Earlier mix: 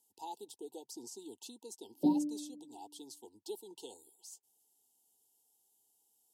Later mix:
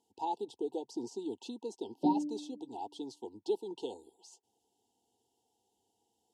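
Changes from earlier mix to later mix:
speech +11.5 dB; master: add tape spacing loss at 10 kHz 25 dB

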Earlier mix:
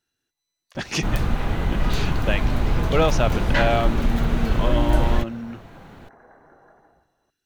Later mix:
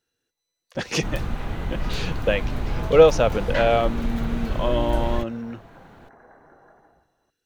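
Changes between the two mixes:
speech: add bell 490 Hz +12 dB 0.31 oct; first sound -5.5 dB

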